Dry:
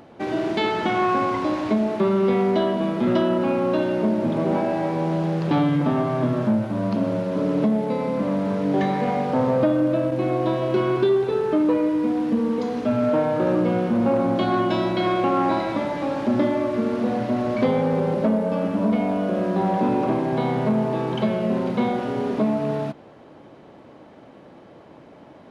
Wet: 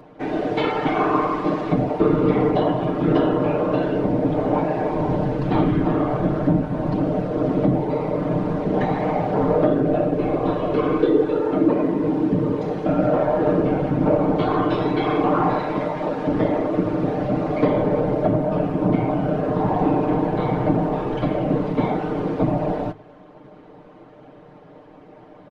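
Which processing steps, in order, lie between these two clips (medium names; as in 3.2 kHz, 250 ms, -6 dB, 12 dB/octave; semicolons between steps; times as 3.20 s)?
treble shelf 3.6 kHz -11 dB; whisper effect; hum notches 50/100/150 Hz; comb 6.6 ms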